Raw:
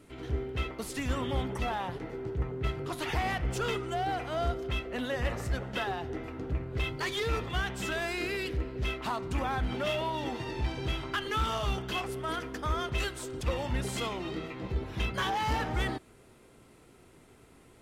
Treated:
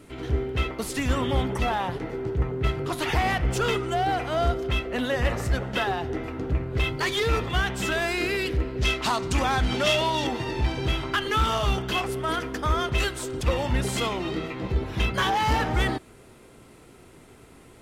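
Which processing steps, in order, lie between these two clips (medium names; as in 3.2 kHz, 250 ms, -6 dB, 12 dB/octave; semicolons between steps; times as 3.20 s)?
8.81–10.27 s: peaking EQ 6.1 kHz +10 dB 1.9 oct; trim +7 dB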